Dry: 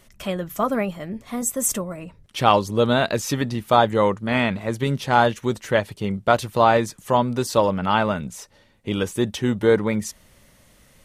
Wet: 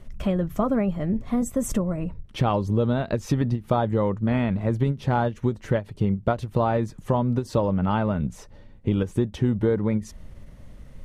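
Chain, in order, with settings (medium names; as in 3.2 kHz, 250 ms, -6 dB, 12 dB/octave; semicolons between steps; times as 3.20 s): tilt EQ -3.5 dB/octave; compression 5:1, threshold -19 dBFS, peak gain reduction 11.5 dB; endings held to a fixed fall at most 270 dB/s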